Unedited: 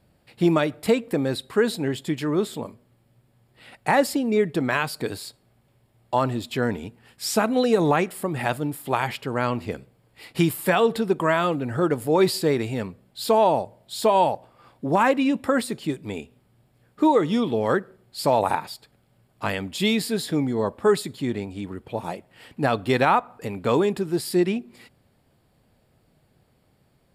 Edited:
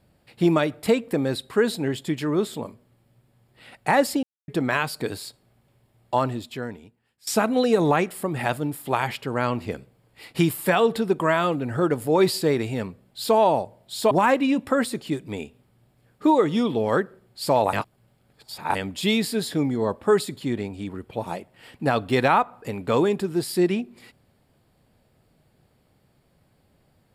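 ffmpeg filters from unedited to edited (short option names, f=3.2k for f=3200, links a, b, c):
-filter_complex "[0:a]asplit=7[a][b][c][d][e][f][g];[a]atrim=end=4.23,asetpts=PTS-STARTPTS,afade=t=out:st=4.226:d=0.004:c=hsin[h];[b]atrim=start=4.23:end=4.48,asetpts=PTS-STARTPTS,volume=0[i];[c]atrim=start=4.48:end=7.27,asetpts=PTS-STARTPTS,afade=t=in:d=0.004:c=hsin,afade=t=out:st=1.69:d=1.1:c=qua:silence=0.0891251[j];[d]atrim=start=7.27:end=14.112,asetpts=PTS-STARTPTS,afade=t=in:d=0.004:c=hsin:silence=0.0891251[k];[e]atrim=start=14.878:end=18.502[l];[f]atrim=start=18.498:end=19.522,asetpts=PTS-STARTPTS,areverse[m];[g]atrim=start=19.518[n];[h][i][j][k]concat=n=4:v=0:a=1[o];[o][l]acrossfade=d=0.004:c1=hsin:c2=hsin[p];[p][m]acrossfade=d=0.004:c1=hsin:c2=hsin[q];[q][n]acrossfade=d=0.004:c1=hsin:c2=hsin"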